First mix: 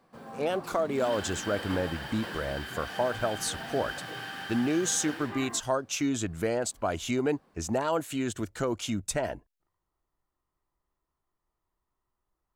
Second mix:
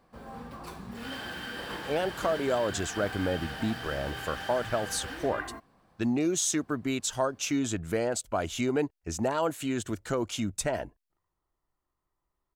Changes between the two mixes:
speech: entry +1.50 s
background: remove high-pass filter 110 Hz 24 dB per octave

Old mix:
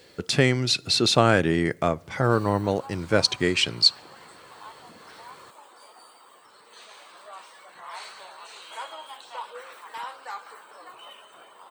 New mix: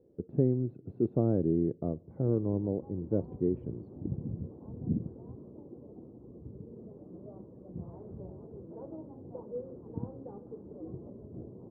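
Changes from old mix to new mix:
background: remove high-pass filter 1,100 Hz 12 dB per octave
master: add transistor ladder low-pass 490 Hz, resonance 25%

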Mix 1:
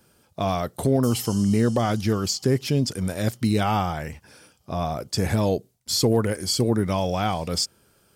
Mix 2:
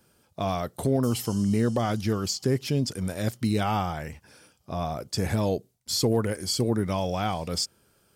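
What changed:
speech −3.5 dB
background −5.5 dB

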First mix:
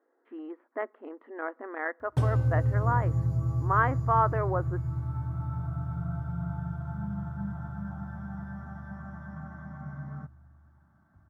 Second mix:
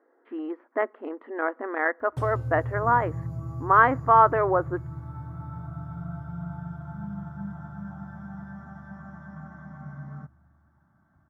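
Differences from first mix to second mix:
speech +7.5 dB
first sound −6.5 dB
master: add high-shelf EQ 8,300 Hz +5.5 dB

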